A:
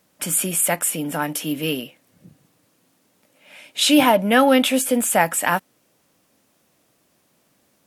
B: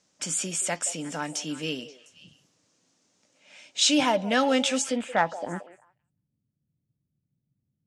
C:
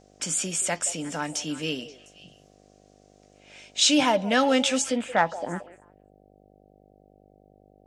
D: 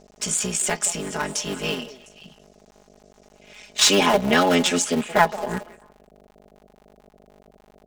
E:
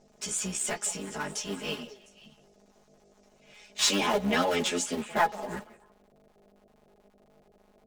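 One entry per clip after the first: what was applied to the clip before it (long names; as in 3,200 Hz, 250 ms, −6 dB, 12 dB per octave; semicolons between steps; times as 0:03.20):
low-pass with resonance 7,900 Hz, resonance Q 1.7; low-pass filter sweep 6,100 Hz → 130 Hz, 0:04.86–0:05.77; echo through a band-pass that steps 176 ms, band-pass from 540 Hz, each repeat 1.4 octaves, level −11 dB; level −8.5 dB
hum with harmonics 50 Hz, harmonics 15, −59 dBFS 0 dB per octave; level +1.5 dB
sub-harmonics by changed cycles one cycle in 3, muted; comb filter 4.8 ms, depth 75%; level +3.5 dB
string-ensemble chorus; level −5 dB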